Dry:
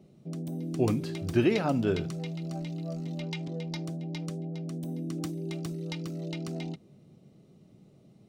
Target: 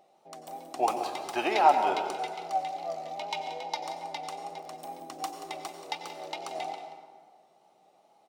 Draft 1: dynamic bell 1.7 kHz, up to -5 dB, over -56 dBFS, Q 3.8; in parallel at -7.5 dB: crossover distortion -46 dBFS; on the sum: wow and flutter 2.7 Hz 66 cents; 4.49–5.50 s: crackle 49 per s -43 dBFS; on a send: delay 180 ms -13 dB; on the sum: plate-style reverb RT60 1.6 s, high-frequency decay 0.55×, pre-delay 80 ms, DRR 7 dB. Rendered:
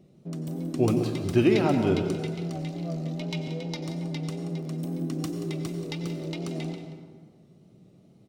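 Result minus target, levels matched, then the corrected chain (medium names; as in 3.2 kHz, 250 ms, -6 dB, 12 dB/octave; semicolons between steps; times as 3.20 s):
1 kHz band -15.0 dB
dynamic bell 1.7 kHz, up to -5 dB, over -56 dBFS, Q 3.8; resonant high-pass 800 Hz, resonance Q 7.1; in parallel at -7.5 dB: crossover distortion -46 dBFS; on the sum: wow and flutter 2.7 Hz 66 cents; 4.49–5.50 s: crackle 49 per s -43 dBFS; on a send: delay 180 ms -13 dB; on the sum: plate-style reverb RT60 1.6 s, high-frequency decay 0.55×, pre-delay 80 ms, DRR 7 dB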